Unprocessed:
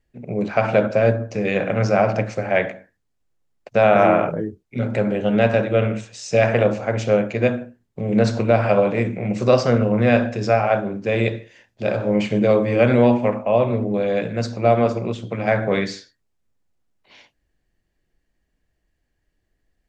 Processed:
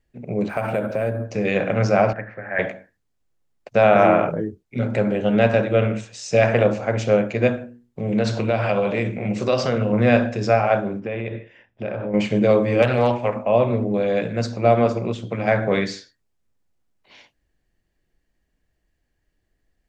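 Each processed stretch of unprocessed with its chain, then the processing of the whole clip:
0.49–1.25 s: peaking EQ 4.9 kHz -2.5 dB 1 oct + compression 2.5:1, threshold -21 dBFS + decimation joined by straight lines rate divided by 4×
2.13–2.59 s: companding laws mixed up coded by mu + four-pole ladder low-pass 1.9 kHz, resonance 75%
7.53–9.93 s: hum notches 60/120/180/240/300/360/420/480/540/600 Hz + dynamic bell 3.2 kHz, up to +6 dB, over -44 dBFS, Q 1.7 + compression 2:1, threshold -18 dBFS
11.00–12.14 s: Savitzky-Golay filter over 25 samples + compression, threshold -23 dBFS
12.82–13.36 s: peaking EQ 250 Hz -10.5 dB 1.1 oct + hard clipper -9.5 dBFS + loudspeaker Doppler distortion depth 0.23 ms
whole clip: none

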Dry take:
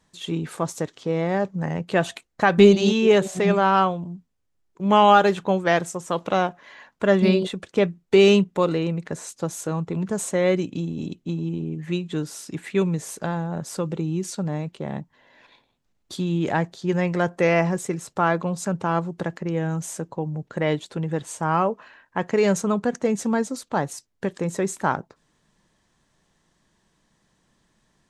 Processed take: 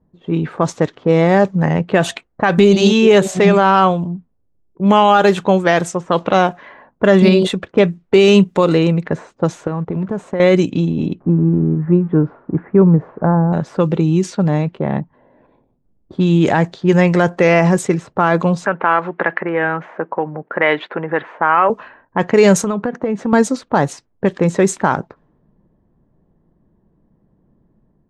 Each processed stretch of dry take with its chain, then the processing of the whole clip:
9.67–10.40 s: companding laws mixed up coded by A + treble shelf 5.2 kHz +5 dB + compression 5:1, threshold -28 dBFS
11.20–13.53 s: zero-crossing glitches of -28.5 dBFS + low-pass 1.3 kHz 24 dB/octave + bass shelf 220 Hz +4 dB
18.66–21.70 s: compression 2:1, threshold -25 dBFS + band-pass 330–2400 Hz + peaking EQ 1.9 kHz +13 dB 2 oct
22.56–23.33 s: high-pass 150 Hz 6 dB/octave + compression, threshold -26 dBFS
whole clip: level rider gain up to 3.5 dB; level-controlled noise filter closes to 450 Hz, open at -16 dBFS; loudness maximiser +9 dB; trim -1 dB

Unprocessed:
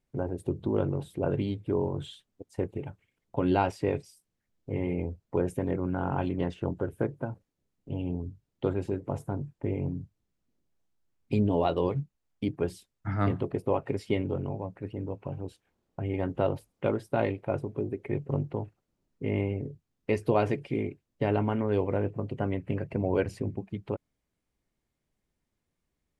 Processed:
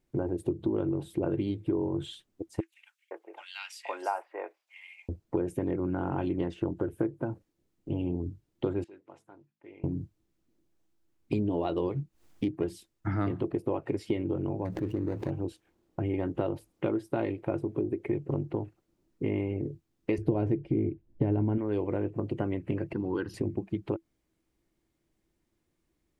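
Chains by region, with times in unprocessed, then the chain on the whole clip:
2.60–5.09 s: high-pass 690 Hz 24 dB/octave + bands offset in time highs, lows 510 ms, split 1.9 kHz
8.84–9.84 s: low-pass 2.8 kHz + differentiator + de-hum 52.21 Hz, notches 5
12.00–12.69 s: self-modulated delay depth 0.1 ms + upward compressor, threshold -48 dBFS
14.65–15.31 s: median filter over 41 samples + level flattener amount 70%
20.18–21.58 s: tilt EQ -4 dB/octave + band-stop 1.2 kHz, Q 8.1
22.93–23.34 s: high-pass 270 Hz 6 dB/octave + static phaser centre 2.3 kHz, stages 6
whole clip: peaking EQ 330 Hz +13 dB 0.24 oct; compression 4:1, threshold -30 dBFS; trim +3 dB

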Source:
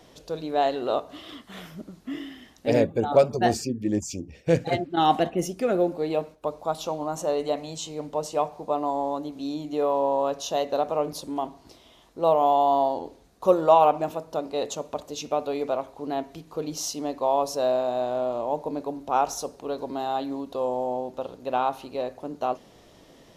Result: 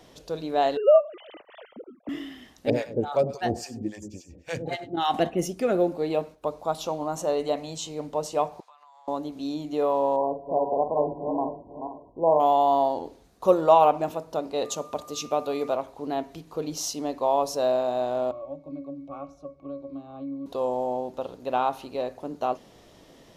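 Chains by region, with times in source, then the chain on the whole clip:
0.77–2.09 s: formants replaced by sine waves + peaking EQ 580 Hz +10 dB 0.85 oct
2.70–5.14 s: feedback delay 100 ms, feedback 43%, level -15 dB + harmonic tremolo 3.6 Hz, depth 100%, crossover 730 Hz
8.60–9.08 s: high-pass 1.2 kHz 24 dB/octave + compression 16:1, threshold -49 dBFS + distance through air 50 m
10.16–12.40 s: backward echo that repeats 245 ms, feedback 46%, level -6.5 dB + brick-wall FIR low-pass 1.1 kHz + doubling 46 ms -9 dB
14.64–15.74 s: high-pass 64 Hz + treble shelf 6.1 kHz +5.5 dB + whistle 1.2 kHz -45 dBFS
18.31–20.46 s: treble shelf 2.5 kHz +9.5 dB + pitch-class resonator C#, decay 0.17 s + three bands compressed up and down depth 70%
whole clip: none

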